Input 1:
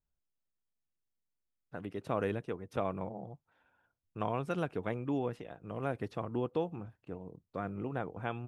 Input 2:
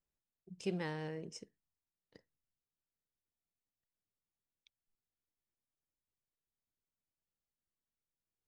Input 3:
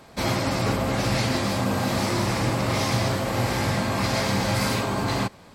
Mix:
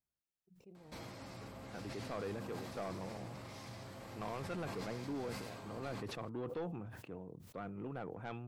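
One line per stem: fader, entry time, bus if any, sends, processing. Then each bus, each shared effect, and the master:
-4.5 dB, 0.00 s, no send, high-pass 91 Hz
-14.5 dB, 0.00 s, no send, tremolo 2.1 Hz, depth 61%; boxcar filter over 27 samples
-17.5 dB, 0.75 s, no send, compression 5:1, threshold -30 dBFS, peak gain reduction 10.5 dB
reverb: none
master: saturation -35 dBFS, distortion -10 dB; decay stretcher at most 33 dB/s

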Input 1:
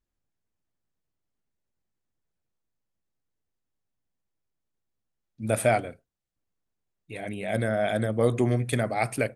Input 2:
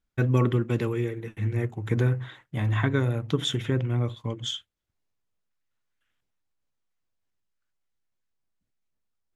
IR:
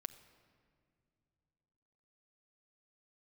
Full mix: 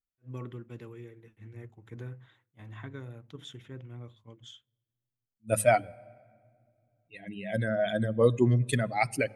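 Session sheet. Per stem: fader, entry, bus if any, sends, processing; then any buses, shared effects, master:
+1.0 dB, 0.00 s, send -6 dB, expander on every frequency bin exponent 2
-18.5 dB, 0.00 s, send -20 dB, none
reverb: on, pre-delay 6 ms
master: de-hum 105 Hz, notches 2; attacks held to a fixed rise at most 440 dB/s

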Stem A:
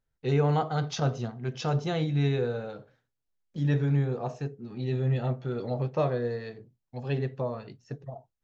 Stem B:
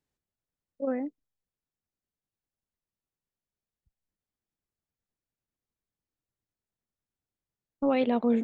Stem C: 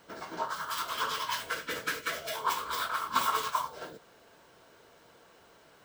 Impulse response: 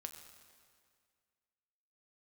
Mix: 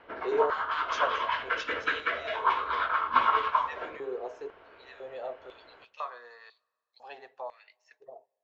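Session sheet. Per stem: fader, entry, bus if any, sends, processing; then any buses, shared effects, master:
-9.0 dB, 0.00 s, send -19 dB, step-sequenced high-pass 2 Hz 420–3900 Hz
mute
+2.5 dB, 0.00 s, send -4 dB, low-pass 2.7 kHz 24 dB/octave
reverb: on, RT60 2.0 s, pre-delay 6 ms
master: peaking EQ 160 Hz -15 dB 0.91 oct

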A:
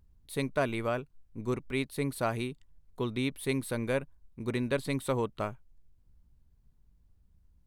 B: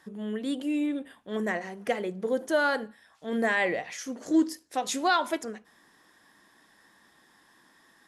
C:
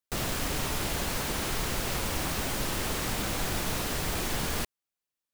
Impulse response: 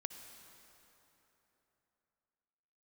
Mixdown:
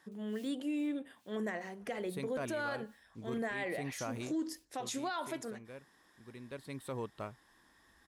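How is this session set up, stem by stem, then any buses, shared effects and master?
4.51 s -8 dB -> 4.97 s -20 dB -> 6.31 s -20 dB -> 6.91 s -9 dB, 1.80 s, no send, none
-6.0 dB, 0.00 s, no send, none
-14.0 dB, 0.00 s, no send, steep high-pass 2.3 kHz; logarithmic tremolo 2.4 Hz, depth 31 dB; auto duck -23 dB, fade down 1.00 s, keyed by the second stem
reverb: none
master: high-pass 47 Hz; peak limiter -29 dBFS, peak gain reduction 11 dB

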